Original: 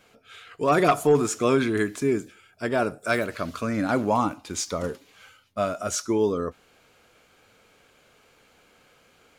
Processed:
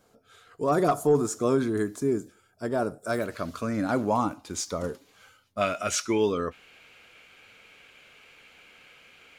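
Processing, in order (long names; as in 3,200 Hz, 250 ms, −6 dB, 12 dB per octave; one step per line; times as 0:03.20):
parametric band 2,500 Hz −14 dB 1.2 octaves, from 0:03.20 −4.5 dB, from 0:05.61 +13 dB
level −2 dB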